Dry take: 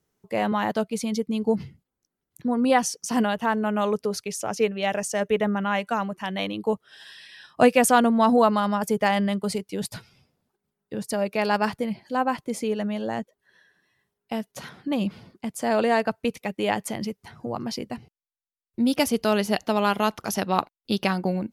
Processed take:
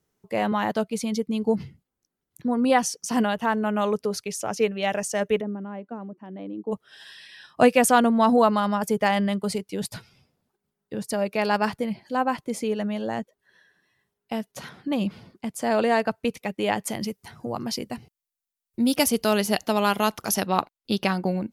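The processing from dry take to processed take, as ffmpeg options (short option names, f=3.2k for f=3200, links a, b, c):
-filter_complex "[0:a]asplit=3[a][b][c];[a]afade=t=out:st=5.4:d=0.02[d];[b]bandpass=f=300:t=q:w=2.1,afade=t=in:st=5.4:d=0.02,afade=t=out:st=6.71:d=0.02[e];[c]afade=t=in:st=6.71:d=0.02[f];[d][e][f]amix=inputs=3:normalize=0,asettb=1/sr,asplit=3[g][h][i];[g]atrim=end=16.874[j];[h]atrim=start=16.87:end=20.47,asetpts=PTS-STARTPTS,afade=t=in:d=0.004:c=qsin,afade=t=out:st=3.596:d=0.004:c=qsin,highshelf=f=6.1k:g=9[k];[i]atrim=start=20.466[l];[j][k]acrossfade=d=0.004:c1=hsin:c2=qsin[m];[m][l]acrossfade=d=0.004:c1=qsin:c2=hsin"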